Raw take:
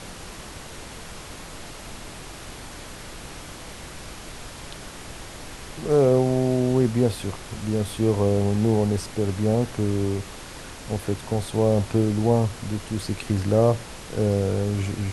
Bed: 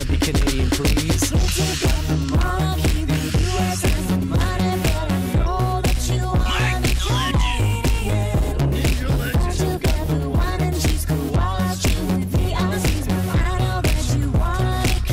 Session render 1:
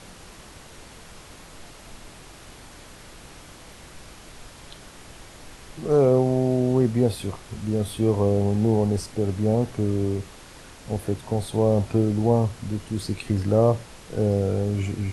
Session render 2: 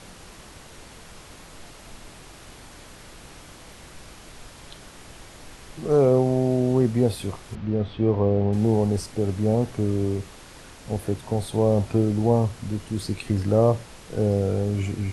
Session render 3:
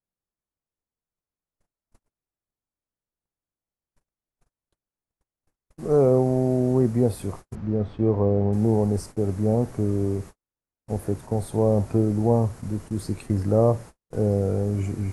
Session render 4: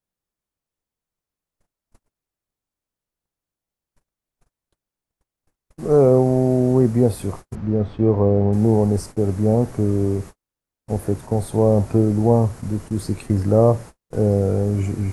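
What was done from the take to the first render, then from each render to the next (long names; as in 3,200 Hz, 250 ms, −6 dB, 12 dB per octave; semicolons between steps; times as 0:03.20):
noise reduction from a noise print 6 dB
0:07.55–0:08.53: Gaussian smoothing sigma 2.3 samples
noise gate −36 dBFS, range −50 dB; parametric band 3,300 Hz −12 dB 1.4 octaves
level +4.5 dB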